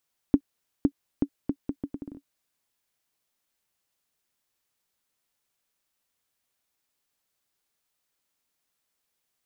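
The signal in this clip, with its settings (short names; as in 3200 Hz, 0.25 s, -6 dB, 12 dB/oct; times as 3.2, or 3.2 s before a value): bouncing ball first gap 0.51 s, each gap 0.73, 282 Hz, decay 66 ms -7 dBFS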